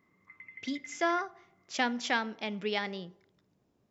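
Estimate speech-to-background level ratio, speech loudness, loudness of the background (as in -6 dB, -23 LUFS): 14.0 dB, -33.5 LUFS, -47.5 LUFS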